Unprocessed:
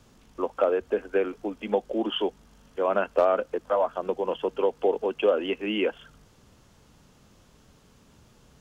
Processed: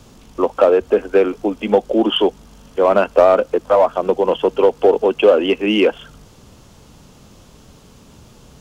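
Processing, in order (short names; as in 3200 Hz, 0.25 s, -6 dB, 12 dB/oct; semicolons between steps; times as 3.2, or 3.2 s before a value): in parallel at -5 dB: hard clip -21.5 dBFS, distortion -10 dB; on the sum: bell 1700 Hz -4.5 dB 0.86 oct; gain +8.5 dB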